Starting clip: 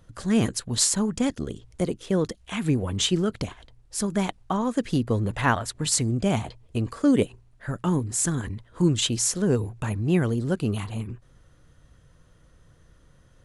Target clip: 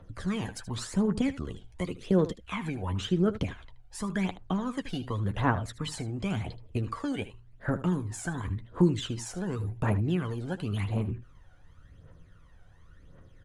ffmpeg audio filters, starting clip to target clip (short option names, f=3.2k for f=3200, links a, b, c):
-filter_complex "[0:a]bass=f=250:g=-4,treble=f=4k:g=-11,acrossover=split=230|1600[a][b][c];[a]acompressor=threshold=-34dB:ratio=4[d];[b]acompressor=threshold=-31dB:ratio=4[e];[c]acompressor=threshold=-41dB:ratio=4[f];[d][e][f]amix=inputs=3:normalize=0,aphaser=in_gain=1:out_gain=1:delay=1.4:decay=0.66:speed=0.91:type=triangular,aecho=1:1:11|77:0.335|0.188,volume=-2dB"